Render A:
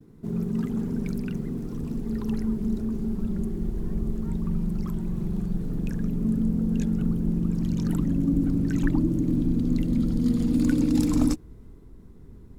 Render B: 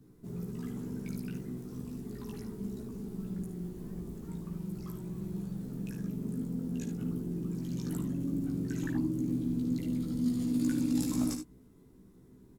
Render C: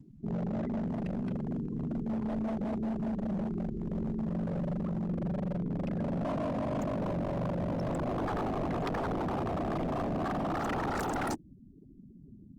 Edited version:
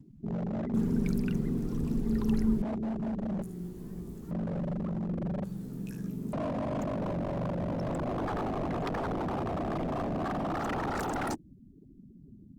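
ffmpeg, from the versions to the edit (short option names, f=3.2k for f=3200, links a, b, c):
-filter_complex "[1:a]asplit=2[a][b];[2:a]asplit=4[c][d][e][f];[c]atrim=end=0.742[g];[0:a]atrim=start=0.738:end=2.622[h];[d]atrim=start=2.618:end=3.422[i];[a]atrim=start=3.418:end=4.312[j];[e]atrim=start=4.308:end=5.442[k];[b]atrim=start=5.438:end=6.332[l];[f]atrim=start=6.328[m];[g][h]acrossfade=d=0.004:c1=hsin:c2=hsin[n];[n][i]acrossfade=d=0.004:c1=hsin:c2=hsin[o];[o][j]acrossfade=d=0.004:c1=hsin:c2=hsin[p];[p][k]acrossfade=d=0.004:c1=hsin:c2=hsin[q];[q][l]acrossfade=d=0.004:c1=hsin:c2=hsin[r];[r][m]acrossfade=d=0.004:c1=hsin:c2=hsin"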